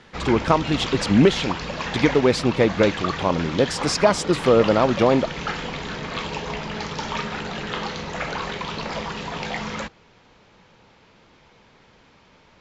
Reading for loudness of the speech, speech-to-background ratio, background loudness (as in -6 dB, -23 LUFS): -20.5 LUFS, 8.5 dB, -29.0 LUFS